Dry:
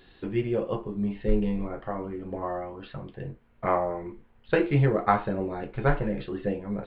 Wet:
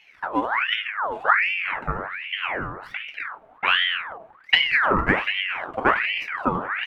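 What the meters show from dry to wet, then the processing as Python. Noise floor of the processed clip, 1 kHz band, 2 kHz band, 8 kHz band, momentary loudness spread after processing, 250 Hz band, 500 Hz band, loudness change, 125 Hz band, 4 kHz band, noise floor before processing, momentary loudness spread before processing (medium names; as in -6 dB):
-53 dBFS, +6.5 dB, +16.5 dB, no reading, 13 LU, -3.5 dB, -3.5 dB, +6.0 dB, -8.0 dB, +25.5 dB, -58 dBFS, 15 LU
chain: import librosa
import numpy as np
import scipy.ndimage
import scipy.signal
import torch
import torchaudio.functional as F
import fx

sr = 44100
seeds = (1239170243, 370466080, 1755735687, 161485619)

p1 = scipy.ndimage.median_filter(x, 9, mode='constant')
p2 = fx.low_shelf(p1, sr, hz=410.0, db=9.5)
p3 = fx.transient(p2, sr, attack_db=5, sustain_db=9)
p4 = fx.rider(p3, sr, range_db=3, speed_s=0.5)
p5 = p3 + (p4 * librosa.db_to_amplitude(-2.0))
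p6 = fx.peak_eq(p5, sr, hz=640.0, db=10.0, octaves=1.3)
p7 = fx.ring_lfo(p6, sr, carrier_hz=1600.0, swing_pct=60, hz=1.3)
y = p7 * librosa.db_to_amplitude(-11.5)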